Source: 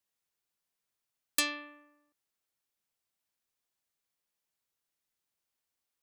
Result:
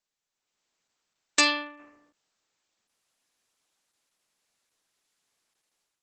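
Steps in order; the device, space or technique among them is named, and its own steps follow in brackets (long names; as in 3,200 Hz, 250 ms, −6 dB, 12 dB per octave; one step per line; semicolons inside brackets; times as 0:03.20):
0:01.39–0:01.81: dynamic equaliser 860 Hz, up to +7 dB, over −57 dBFS, Q 3
video call (high-pass filter 170 Hz 12 dB per octave; automatic gain control gain up to 12 dB; Opus 12 kbit/s 48,000 Hz)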